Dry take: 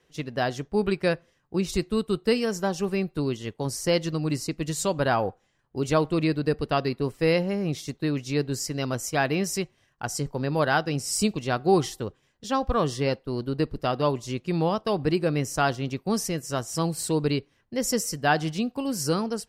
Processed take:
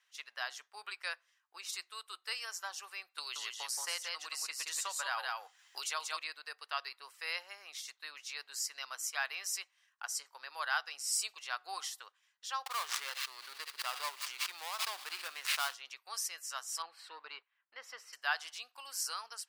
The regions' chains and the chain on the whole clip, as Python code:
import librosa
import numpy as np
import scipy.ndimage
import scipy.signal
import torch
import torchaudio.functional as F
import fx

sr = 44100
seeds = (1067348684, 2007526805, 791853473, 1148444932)

y = fx.chain(x, sr, fx.echo_single(ms=176, db=-3.5),
    fx.band_squash(depth_pct=100), at=(3.18, 6.17))
y = fx.chain(y, sr, fx.dead_time(dead_ms=0.19),
    fx.echo_wet_highpass(ms=61, feedback_pct=82, hz=2100.0, wet_db=-20),
    fx.pre_swell(db_per_s=31.0), at=(12.66, 15.74))
y = fx.chain(y, sr, fx.leveller(passes=1),
    fx.air_absorb(metres=390.0), at=(16.82, 18.13))
y = fx.dynamic_eq(y, sr, hz=2200.0, q=0.77, threshold_db=-39.0, ratio=4.0, max_db=-3)
y = scipy.signal.sosfilt(scipy.signal.butter(4, 1100.0, 'highpass', fs=sr, output='sos'), y)
y = F.gain(torch.from_numpy(y), -4.5).numpy()